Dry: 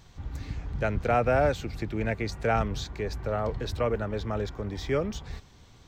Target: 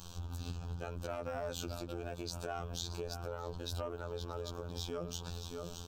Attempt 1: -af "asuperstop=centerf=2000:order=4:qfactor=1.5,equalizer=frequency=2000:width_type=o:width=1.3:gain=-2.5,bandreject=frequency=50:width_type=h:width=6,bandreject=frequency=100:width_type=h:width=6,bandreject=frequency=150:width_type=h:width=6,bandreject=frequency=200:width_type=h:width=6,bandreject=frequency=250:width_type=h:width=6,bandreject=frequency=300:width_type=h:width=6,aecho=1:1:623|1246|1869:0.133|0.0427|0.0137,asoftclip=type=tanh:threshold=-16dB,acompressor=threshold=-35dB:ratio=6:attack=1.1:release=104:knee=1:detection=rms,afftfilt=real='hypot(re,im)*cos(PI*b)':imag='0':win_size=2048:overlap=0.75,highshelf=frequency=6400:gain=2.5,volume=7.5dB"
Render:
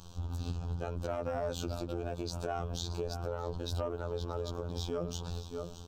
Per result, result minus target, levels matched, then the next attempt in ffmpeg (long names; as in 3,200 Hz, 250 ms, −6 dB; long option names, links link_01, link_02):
downward compressor: peak gain reduction −5 dB; 8,000 Hz band −4.5 dB; 2,000 Hz band −4.0 dB
-af "asuperstop=centerf=2000:order=4:qfactor=1.5,equalizer=frequency=2000:width_type=o:width=1.3:gain=-2.5,bandreject=frequency=50:width_type=h:width=6,bandreject=frequency=100:width_type=h:width=6,bandreject=frequency=150:width_type=h:width=6,bandreject=frequency=200:width_type=h:width=6,bandreject=frequency=250:width_type=h:width=6,bandreject=frequency=300:width_type=h:width=6,aecho=1:1:623|1246|1869:0.133|0.0427|0.0137,asoftclip=type=tanh:threshold=-16dB,acompressor=threshold=-41dB:ratio=6:attack=1.1:release=104:knee=1:detection=rms,afftfilt=real='hypot(re,im)*cos(PI*b)':imag='0':win_size=2048:overlap=0.75,highshelf=frequency=6400:gain=2.5,volume=7.5dB"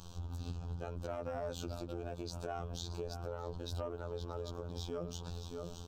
8,000 Hz band −4.5 dB; 2,000 Hz band −4.0 dB
-af "asuperstop=centerf=2000:order=4:qfactor=1.5,equalizer=frequency=2000:width_type=o:width=1.3:gain=-2.5,bandreject=frequency=50:width_type=h:width=6,bandreject=frequency=100:width_type=h:width=6,bandreject=frequency=150:width_type=h:width=6,bandreject=frequency=200:width_type=h:width=6,bandreject=frequency=250:width_type=h:width=6,bandreject=frequency=300:width_type=h:width=6,aecho=1:1:623|1246|1869:0.133|0.0427|0.0137,asoftclip=type=tanh:threshold=-16dB,acompressor=threshold=-41dB:ratio=6:attack=1.1:release=104:knee=1:detection=rms,afftfilt=real='hypot(re,im)*cos(PI*b)':imag='0':win_size=2048:overlap=0.75,highshelf=frequency=6400:gain=12.5,volume=7.5dB"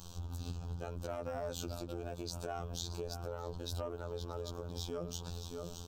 2,000 Hz band −3.5 dB
-af "asuperstop=centerf=2000:order=4:qfactor=1.5,equalizer=frequency=2000:width_type=o:width=1.3:gain=4,bandreject=frequency=50:width_type=h:width=6,bandreject=frequency=100:width_type=h:width=6,bandreject=frequency=150:width_type=h:width=6,bandreject=frequency=200:width_type=h:width=6,bandreject=frequency=250:width_type=h:width=6,bandreject=frequency=300:width_type=h:width=6,aecho=1:1:623|1246|1869:0.133|0.0427|0.0137,asoftclip=type=tanh:threshold=-16dB,acompressor=threshold=-41dB:ratio=6:attack=1.1:release=104:knee=1:detection=rms,afftfilt=real='hypot(re,im)*cos(PI*b)':imag='0':win_size=2048:overlap=0.75,highshelf=frequency=6400:gain=12.5,volume=7.5dB"